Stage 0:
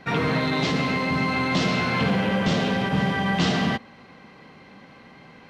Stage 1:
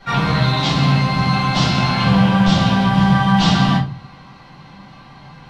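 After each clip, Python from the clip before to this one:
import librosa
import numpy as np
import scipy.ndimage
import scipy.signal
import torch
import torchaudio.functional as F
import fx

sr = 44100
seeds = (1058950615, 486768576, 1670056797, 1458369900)

y = fx.graphic_eq(x, sr, hz=(125, 250, 500, 1000, 2000, 4000), db=(8, -7, -8, 5, -5, 4))
y = fx.room_shoebox(y, sr, seeds[0], volume_m3=150.0, walls='furnished', distance_m=4.6)
y = F.gain(torch.from_numpy(y), -2.5).numpy()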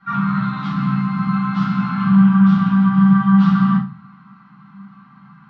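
y = fx.double_bandpass(x, sr, hz=500.0, octaves=2.7)
y = fx.rev_schroeder(y, sr, rt60_s=0.34, comb_ms=29, drr_db=15.0)
y = F.gain(torch.from_numpy(y), 5.0).numpy()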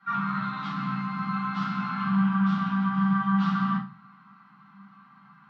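y = fx.highpass(x, sr, hz=430.0, slope=6)
y = F.gain(torch.from_numpy(y), -4.5).numpy()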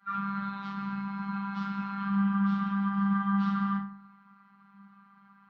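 y = fx.robotise(x, sr, hz=198.0)
y = fx.echo_feedback(y, sr, ms=96, feedback_pct=39, wet_db=-17.5)
y = F.gain(torch.from_numpy(y), -4.5).numpy()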